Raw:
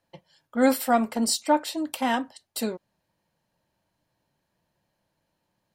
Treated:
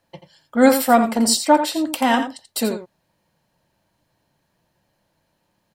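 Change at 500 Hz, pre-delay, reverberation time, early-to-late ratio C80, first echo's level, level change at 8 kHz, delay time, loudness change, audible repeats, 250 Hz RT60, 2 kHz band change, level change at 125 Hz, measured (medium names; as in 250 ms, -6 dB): +7.5 dB, no reverb, no reverb, no reverb, -9.5 dB, +7.5 dB, 85 ms, +7.5 dB, 1, no reverb, +7.5 dB, no reading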